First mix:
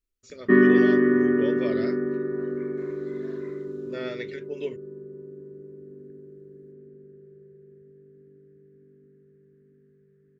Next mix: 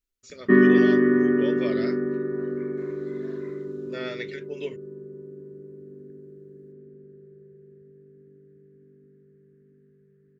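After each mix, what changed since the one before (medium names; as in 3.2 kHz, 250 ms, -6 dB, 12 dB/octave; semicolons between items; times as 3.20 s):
first voice: add tilt shelf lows -3.5 dB, about 710 Hz; master: add peaking EQ 180 Hz +3 dB 0.6 oct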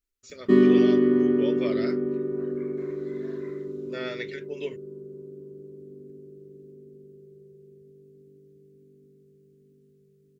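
background: remove resonant low-pass 1.7 kHz, resonance Q 7.4; master: add peaking EQ 180 Hz -3 dB 0.6 oct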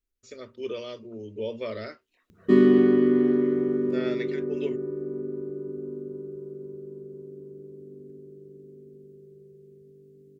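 first voice: add tilt shelf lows +3.5 dB, about 710 Hz; second voice -4.0 dB; background: entry +2.00 s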